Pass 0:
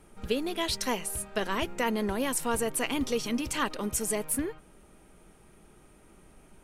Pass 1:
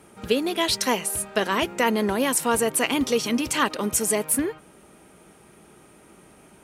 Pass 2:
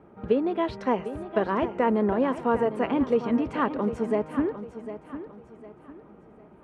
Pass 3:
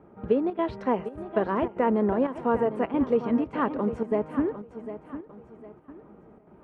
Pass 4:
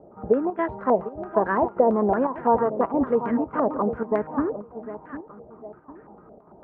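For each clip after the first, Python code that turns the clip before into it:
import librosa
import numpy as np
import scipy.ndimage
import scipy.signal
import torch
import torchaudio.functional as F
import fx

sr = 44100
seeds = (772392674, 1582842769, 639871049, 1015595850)

y1 = scipy.signal.sosfilt(scipy.signal.butter(2, 63.0, 'highpass', fs=sr, output='sos'), x)
y1 = fx.low_shelf(y1, sr, hz=87.0, db=-10.5)
y1 = F.gain(torch.from_numpy(y1), 7.5).numpy()
y2 = scipy.signal.sosfilt(scipy.signal.butter(2, 1100.0, 'lowpass', fs=sr, output='sos'), y1)
y2 = fx.echo_feedback(y2, sr, ms=753, feedback_pct=35, wet_db=-12.0)
y3 = fx.high_shelf(y2, sr, hz=3000.0, db=-10.0)
y3 = fx.chopper(y3, sr, hz=1.7, depth_pct=60, duty_pct=85)
y4 = fx.filter_held_lowpass(y3, sr, hz=8.9, low_hz=640.0, high_hz=1700.0)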